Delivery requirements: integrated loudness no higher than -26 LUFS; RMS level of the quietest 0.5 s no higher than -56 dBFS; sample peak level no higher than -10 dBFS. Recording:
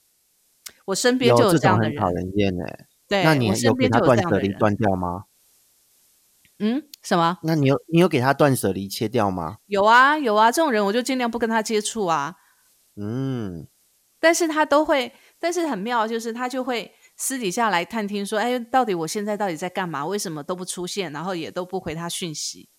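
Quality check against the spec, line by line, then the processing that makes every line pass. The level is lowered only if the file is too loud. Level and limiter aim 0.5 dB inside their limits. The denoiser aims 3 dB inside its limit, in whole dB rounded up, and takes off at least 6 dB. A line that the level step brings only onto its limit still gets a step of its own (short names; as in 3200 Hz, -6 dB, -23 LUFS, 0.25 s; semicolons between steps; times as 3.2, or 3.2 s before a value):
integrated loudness -21.5 LUFS: fail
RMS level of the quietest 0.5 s -64 dBFS: OK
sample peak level -4.5 dBFS: fail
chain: gain -5 dB; limiter -10.5 dBFS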